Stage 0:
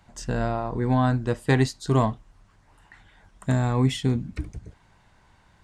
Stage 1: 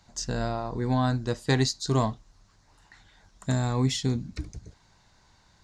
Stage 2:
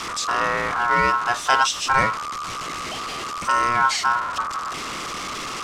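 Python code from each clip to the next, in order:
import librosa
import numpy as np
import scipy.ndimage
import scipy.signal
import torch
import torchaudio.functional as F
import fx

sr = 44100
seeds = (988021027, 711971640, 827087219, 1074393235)

y1 = fx.band_shelf(x, sr, hz=5200.0, db=10.5, octaves=1.1)
y1 = y1 * 10.0 ** (-3.5 / 20.0)
y2 = y1 + 0.5 * 10.0 ** (-27.5 / 20.0) * np.sign(y1)
y2 = y2 * np.sin(2.0 * np.pi * 1200.0 * np.arange(len(y2)) / sr)
y2 = scipy.signal.sosfilt(scipy.signal.butter(2, 7500.0, 'lowpass', fs=sr, output='sos'), y2)
y2 = y2 * 10.0 ** (6.5 / 20.0)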